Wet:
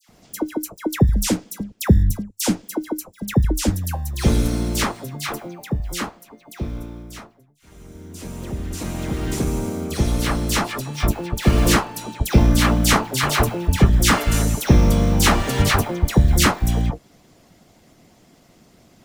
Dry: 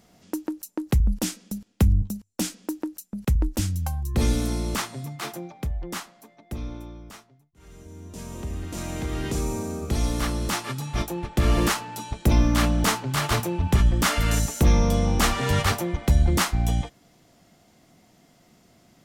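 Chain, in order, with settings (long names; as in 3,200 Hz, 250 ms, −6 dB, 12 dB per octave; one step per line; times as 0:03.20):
pitch vibrato 1.6 Hz 9.5 cents
in parallel at −10 dB: sample-rate reduction 1,800 Hz, jitter 0%
on the sum: all-pass dispersion lows, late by 92 ms, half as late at 1,600 Hz
harmonic and percussive parts rebalanced percussive +9 dB
level −1.5 dB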